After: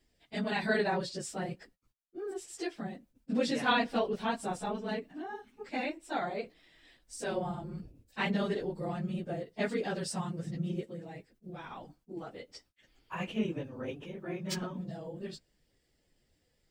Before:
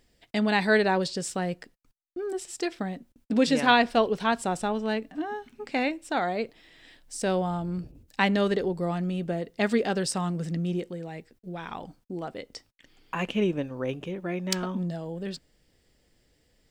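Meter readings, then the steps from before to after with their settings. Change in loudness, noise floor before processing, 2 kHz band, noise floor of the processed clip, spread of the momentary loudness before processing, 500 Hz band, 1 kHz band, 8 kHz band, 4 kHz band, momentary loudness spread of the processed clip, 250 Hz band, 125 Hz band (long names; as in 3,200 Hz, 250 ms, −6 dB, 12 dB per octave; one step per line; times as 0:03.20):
−7.5 dB, −68 dBFS, −7.5 dB, −75 dBFS, 16 LU, −7.5 dB, −8.0 dB, −8.0 dB, −7.5 dB, 16 LU, −8.0 dB, −7.0 dB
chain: random phases in long frames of 50 ms
level −7.5 dB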